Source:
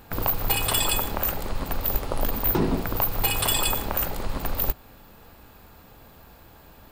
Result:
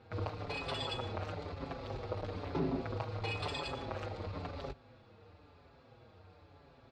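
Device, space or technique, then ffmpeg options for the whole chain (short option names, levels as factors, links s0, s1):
barber-pole flanger into a guitar amplifier: -filter_complex "[0:a]asplit=2[s0][s1];[s1]adelay=5.8,afreqshift=-1[s2];[s0][s2]amix=inputs=2:normalize=1,asoftclip=type=tanh:threshold=0.1,highpass=92,equalizer=f=93:t=q:w=4:g=10,equalizer=f=200:t=q:w=4:g=-6,equalizer=f=490:t=q:w=4:g=4,equalizer=f=970:t=q:w=4:g=-4,equalizer=f=1700:t=q:w=4:g=-5,equalizer=f=3000:t=q:w=4:g=-6,lowpass=f=4500:w=0.5412,lowpass=f=4500:w=1.3066,volume=0.562"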